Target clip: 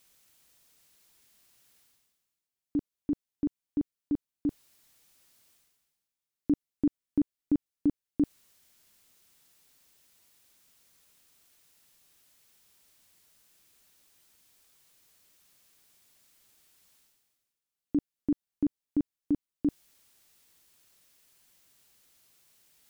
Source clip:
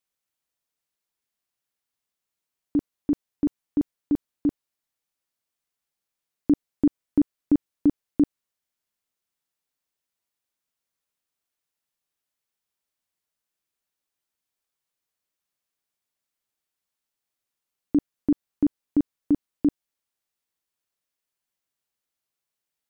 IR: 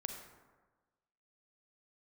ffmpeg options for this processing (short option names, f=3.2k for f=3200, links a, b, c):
-af "equalizer=f=900:w=0.46:g=-5,areverse,acompressor=mode=upward:threshold=-39dB:ratio=2.5,areverse,volume=-4.5dB"